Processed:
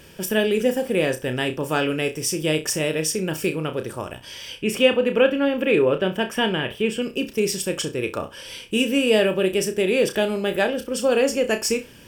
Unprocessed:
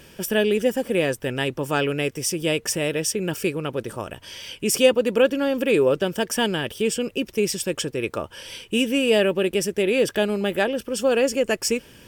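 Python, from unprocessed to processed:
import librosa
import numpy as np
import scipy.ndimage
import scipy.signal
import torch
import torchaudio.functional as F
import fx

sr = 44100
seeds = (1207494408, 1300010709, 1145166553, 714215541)

y = fx.high_shelf_res(x, sr, hz=3800.0, db=-9.5, q=1.5, at=(4.6, 7.02))
y = fx.room_flutter(y, sr, wall_m=5.5, rt60_s=0.23)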